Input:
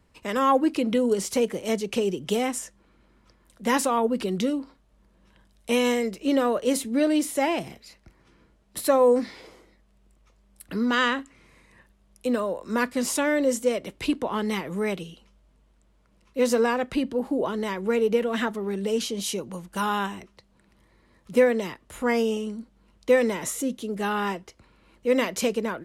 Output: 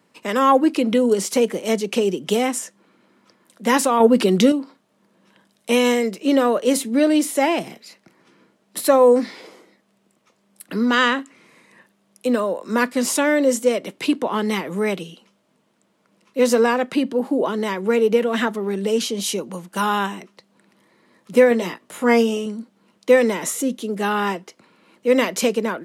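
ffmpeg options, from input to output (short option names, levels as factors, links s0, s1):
-filter_complex "[0:a]highpass=f=170:w=0.5412,highpass=f=170:w=1.3066,asettb=1/sr,asplit=3[s0][s1][s2];[s0]atrim=end=4.004[s3];[s1]atrim=start=4:end=4.52,asetpts=PTS-STARTPTS,afade=t=in:d=0.004:c=qsin,afade=t=out:st=0.516:d=0.004:c=qsin,acontrast=46[s4];[s2]atrim=start=4.516[s5];[s3][s4]acrossfade=d=0.004:c1=hsin:c2=qsin[s6];[s6][s5]acrossfade=d=0.004:c1=qsin:c2=hsin,asettb=1/sr,asplit=3[s7][s8][s9];[s7]atrim=end=21.494[s10];[s8]atrim=start=21.49:end=22.46,asetpts=PTS-STARTPTS,afade=t=in:d=0.004:c=qsin,afade=t=out:st=0.966:d=0.004:c=qsin,asplit=2[s11][s12];[s12]adelay=17,volume=0.501[s13];[s11][s13]amix=inputs=2:normalize=0,atrim=end_sample=42777[s14];[s9]atrim=start=22.456[s15];[s10][s14]acrossfade=d=0.004:c1=hsin:c2=qsin[s16];[s16][s15]acrossfade=d=0.004:c1=qsin:c2=hsin,volume=1.88"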